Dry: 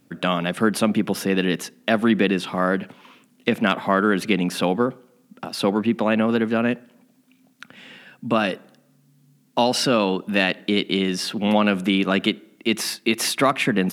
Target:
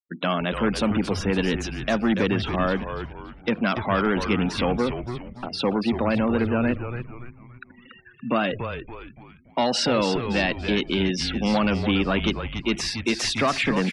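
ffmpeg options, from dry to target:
ffmpeg -i in.wav -filter_complex "[0:a]asoftclip=type=tanh:threshold=-14.5dB,highpass=140,afftfilt=real='re*gte(hypot(re,im),0.0224)':imag='im*gte(hypot(re,im),0.0224)':win_size=1024:overlap=0.75,lowpass=frequency=7500:width=0.5412,lowpass=frequency=7500:width=1.3066,asplit=2[link_01][link_02];[link_02]asplit=5[link_03][link_04][link_05][link_06][link_07];[link_03]adelay=285,afreqshift=-120,volume=-8dB[link_08];[link_04]adelay=570,afreqshift=-240,volume=-16dB[link_09];[link_05]adelay=855,afreqshift=-360,volume=-23.9dB[link_10];[link_06]adelay=1140,afreqshift=-480,volume=-31.9dB[link_11];[link_07]adelay=1425,afreqshift=-600,volume=-39.8dB[link_12];[link_08][link_09][link_10][link_11][link_12]amix=inputs=5:normalize=0[link_13];[link_01][link_13]amix=inputs=2:normalize=0" out.wav

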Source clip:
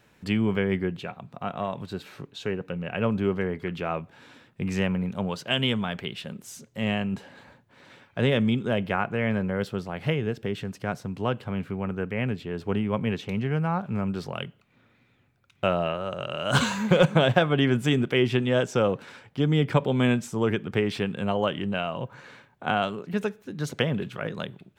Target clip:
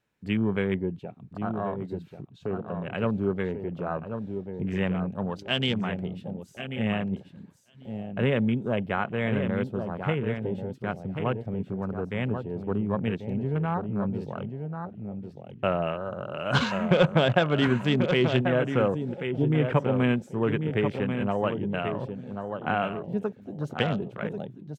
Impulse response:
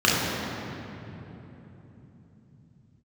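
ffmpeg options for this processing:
-af "aecho=1:1:1088|2176|3264:0.447|0.103|0.0236,afwtdn=0.02,volume=-1.5dB"

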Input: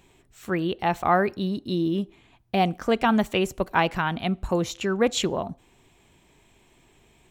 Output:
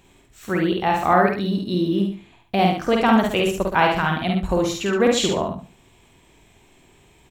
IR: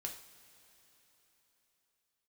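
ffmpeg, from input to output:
-filter_complex "[0:a]asplit=2[link_01][link_02];[link_02]adelay=50,volume=-3dB[link_03];[link_01][link_03]amix=inputs=2:normalize=0,aecho=1:1:71|142|213:0.501|0.115|0.0265,volume=2dB"

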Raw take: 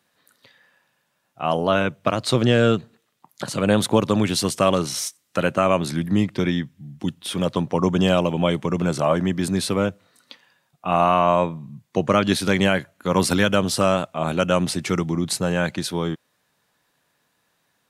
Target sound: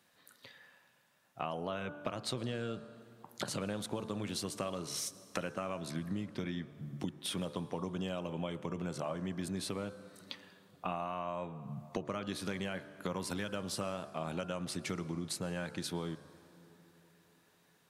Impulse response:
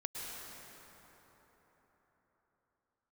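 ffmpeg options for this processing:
-filter_complex "[0:a]bandreject=frequency=73.14:width_type=h:width=4,bandreject=frequency=146.28:width_type=h:width=4,bandreject=frequency=219.42:width_type=h:width=4,bandreject=frequency=292.56:width_type=h:width=4,bandreject=frequency=365.7:width_type=h:width=4,bandreject=frequency=438.84:width_type=h:width=4,bandreject=frequency=511.98:width_type=h:width=4,bandreject=frequency=585.12:width_type=h:width=4,bandreject=frequency=658.26:width_type=h:width=4,bandreject=frequency=731.4:width_type=h:width=4,bandreject=frequency=804.54:width_type=h:width=4,bandreject=frequency=877.68:width_type=h:width=4,bandreject=frequency=950.82:width_type=h:width=4,bandreject=frequency=1023.96:width_type=h:width=4,bandreject=frequency=1097.1:width_type=h:width=4,bandreject=frequency=1170.24:width_type=h:width=4,bandreject=frequency=1243.38:width_type=h:width=4,bandreject=frequency=1316.52:width_type=h:width=4,bandreject=frequency=1389.66:width_type=h:width=4,bandreject=frequency=1462.8:width_type=h:width=4,bandreject=frequency=1535.94:width_type=h:width=4,bandreject=frequency=1609.08:width_type=h:width=4,bandreject=frequency=1682.22:width_type=h:width=4,acompressor=threshold=-33dB:ratio=12,asplit=2[link_01][link_02];[1:a]atrim=start_sample=2205[link_03];[link_02][link_03]afir=irnorm=-1:irlink=0,volume=-15.5dB[link_04];[link_01][link_04]amix=inputs=2:normalize=0,volume=-2.5dB"

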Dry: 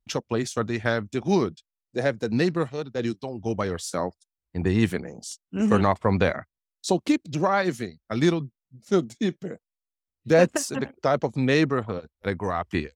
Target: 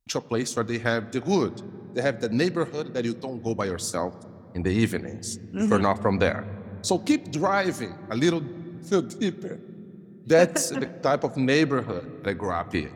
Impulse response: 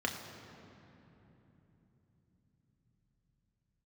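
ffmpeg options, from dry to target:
-filter_complex "[0:a]highshelf=frequency=4100:gain=7.5,asplit=2[link_01][link_02];[1:a]atrim=start_sample=2205,lowpass=3900[link_03];[link_02][link_03]afir=irnorm=-1:irlink=0,volume=-16.5dB[link_04];[link_01][link_04]amix=inputs=2:normalize=0,volume=-2dB"

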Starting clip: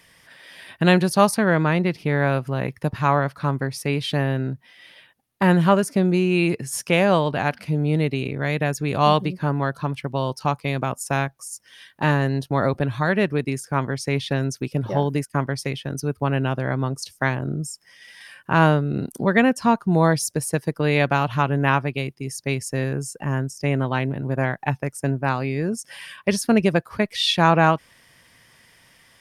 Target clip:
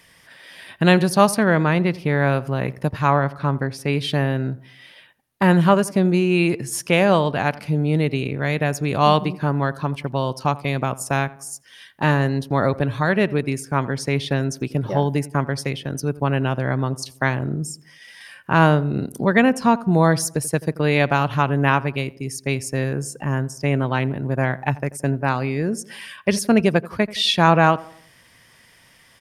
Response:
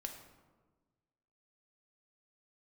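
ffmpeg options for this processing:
-filter_complex "[0:a]asettb=1/sr,asplit=3[link_01][link_02][link_03];[link_01]atrim=end=3.104[link_04];[link_02]atrim=start=3.1:end=3.88,asetpts=PTS-STARTPTS,afade=type=in:duration=0.004:curve=qsin,afade=type=out:start_time=0.776:duration=0.004:curve=qsin,highshelf=frequency=4600:gain=-7.5[link_05];[link_03]atrim=start=3.876[link_06];[link_04][link_05]acrossfade=duration=0.004:curve1=hsin:curve2=qsin[link_07];[link_07][link_06]acrossfade=duration=0.004:curve1=qsin:curve2=hsin,asplit=2[link_08][link_09];[link_09]adelay=85,lowpass=frequency=1400:poles=1,volume=-18dB,asplit=2[link_10][link_11];[link_11]adelay=85,lowpass=frequency=1400:poles=1,volume=0.48,asplit=2[link_12][link_13];[link_13]adelay=85,lowpass=frequency=1400:poles=1,volume=0.48,asplit=2[link_14][link_15];[link_15]adelay=85,lowpass=frequency=1400:poles=1,volume=0.48[link_16];[link_08][link_10][link_12][link_14][link_16]amix=inputs=5:normalize=0,volume=1.5dB"

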